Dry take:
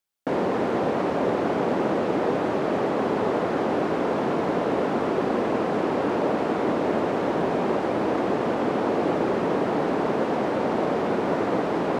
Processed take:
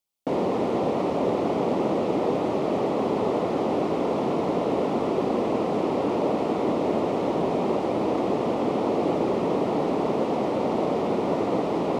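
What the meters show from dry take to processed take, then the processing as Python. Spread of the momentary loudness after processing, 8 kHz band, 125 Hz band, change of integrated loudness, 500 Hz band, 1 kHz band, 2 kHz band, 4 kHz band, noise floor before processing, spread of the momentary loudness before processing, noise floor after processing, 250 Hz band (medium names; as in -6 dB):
1 LU, no reading, 0.0 dB, -0.5 dB, -0.5 dB, -1.5 dB, -7.5 dB, -1.0 dB, -26 dBFS, 1 LU, -27 dBFS, 0.0 dB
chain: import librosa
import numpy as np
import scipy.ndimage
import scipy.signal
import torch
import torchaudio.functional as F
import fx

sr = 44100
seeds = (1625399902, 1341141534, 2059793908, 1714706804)

y = fx.peak_eq(x, sr, hz=1600.0, db=-14.5, octaves=0.45)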